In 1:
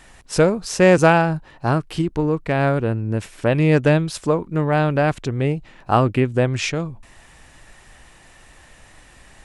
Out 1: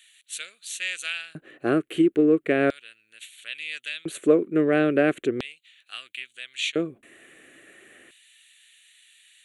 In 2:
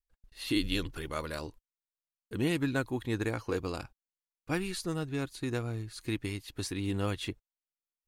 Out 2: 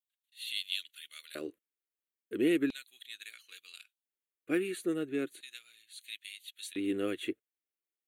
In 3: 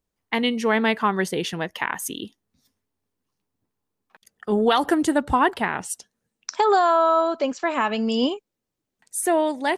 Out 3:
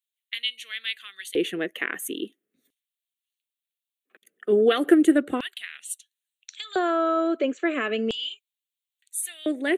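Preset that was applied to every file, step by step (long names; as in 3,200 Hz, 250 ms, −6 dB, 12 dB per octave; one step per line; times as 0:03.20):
phaser with its sweep stopped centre 2,200 Hz, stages 4
auto-filter high-pass square 0.37 Hz 350–3,700 Hz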